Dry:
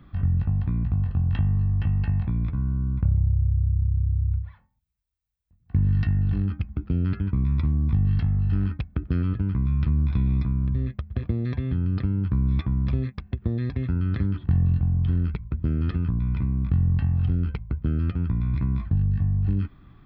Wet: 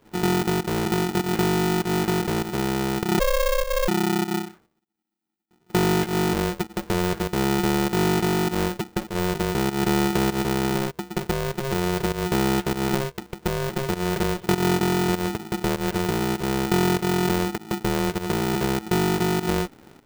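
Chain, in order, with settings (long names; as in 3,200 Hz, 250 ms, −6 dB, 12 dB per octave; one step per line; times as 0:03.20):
0:03.19–0:03.88: frequency shifter +180 Hz
fake sidechain pumping 99 BPM, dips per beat 1, −15 dB, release 148 ms
ring modulator with a square carrier 270 Hz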